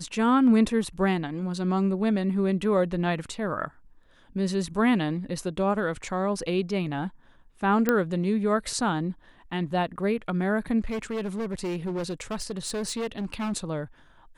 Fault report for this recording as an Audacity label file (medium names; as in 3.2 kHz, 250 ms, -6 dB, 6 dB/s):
7.890000	7.890000	pop -9 dBFS
10.800000	13.530000	clipped -26.5 dBFS